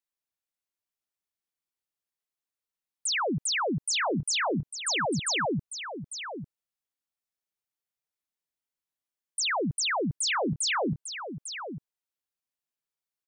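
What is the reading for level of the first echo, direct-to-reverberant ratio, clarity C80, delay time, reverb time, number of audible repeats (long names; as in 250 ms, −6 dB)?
−9.5 dB, no reverb audible, no reverb audible, 849 ms, no reverb audible, 1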